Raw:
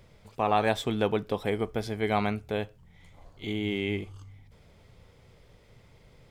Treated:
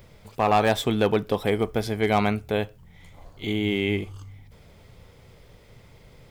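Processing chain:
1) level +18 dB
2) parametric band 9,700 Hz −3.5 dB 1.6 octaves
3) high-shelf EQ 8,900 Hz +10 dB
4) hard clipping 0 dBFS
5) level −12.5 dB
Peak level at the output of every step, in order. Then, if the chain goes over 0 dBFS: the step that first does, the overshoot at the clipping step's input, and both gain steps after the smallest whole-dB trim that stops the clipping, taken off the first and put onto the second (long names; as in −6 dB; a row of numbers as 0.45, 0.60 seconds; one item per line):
+6.0, +5.5, +6.0, 0.0, −12.5 dBFS
step 1, 6.0 dB
step 1 +12 dB, step 5 −6.5 dB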